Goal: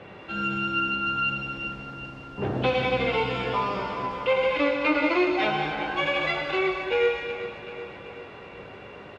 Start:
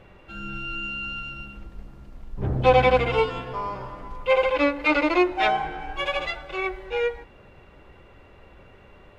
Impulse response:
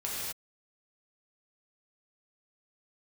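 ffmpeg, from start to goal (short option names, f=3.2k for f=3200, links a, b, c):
-filter_complex "[0:a]acrossover=split=250|1900[a][b][c];[a]acompressor=threshold=-34dB:ratio=4[d];[b]acompressor=threshold=-35dB:ratio=4[e];[c]acompressor=threshold=-41dB:ratio=4[f];[d][e][f]amix=inputs=3:normalize=0,highpass=140,lowpass=4.9k,aecho=1:1:380|760|1140|1520|1900|2280:0.251|0.146|0.0845|0.049|0.0284|0.0165,asplit=2[g][h];[1:a]atrim=start_sample=2205,highshelf=f=4.4k:g=11,adelay=19[i];[h][i]afir=irnorm=-1:irlink=0,volume=-10dB[j];[g][j]amix=inputs=2:normalize=0,volume=7.5dB"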